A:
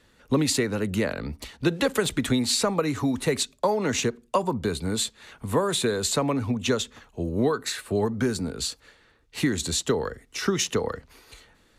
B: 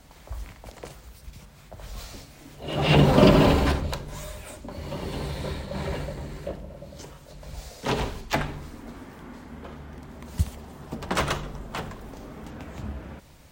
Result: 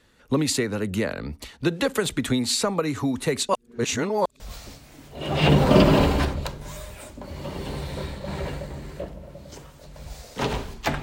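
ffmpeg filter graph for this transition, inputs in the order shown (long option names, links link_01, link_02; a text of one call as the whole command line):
ffmpeg -i cue0.wav -i cue1.wav -filter_complex "[0:a]apad=whole_dur=11.02,atrim=end=11.02,asplit=2[link_01][link_02];[link_01]atrim=end=3.492[link_03];[link_02]atrim=start=3.488:end=4.402,asetpts=PTS-STARTPTS,areverse[link_04];[1:a]atrim=start=1.868:end=8.49[link_05];[link_03][link_04]acrossfade=duration=0.004:curve1=hsin:curve2=hsin[link_06];[link_06][link_05]acrossfade=duration=0.004:curve1=hsin:curve2=hsin" out.wav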